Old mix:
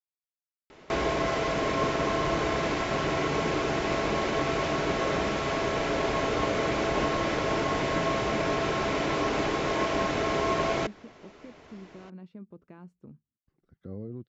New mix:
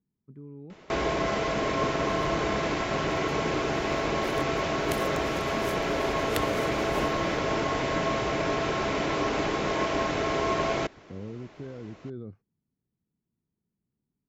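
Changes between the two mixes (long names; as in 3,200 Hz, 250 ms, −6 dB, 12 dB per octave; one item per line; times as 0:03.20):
speech: entry −2.75 s
second sound: unmuted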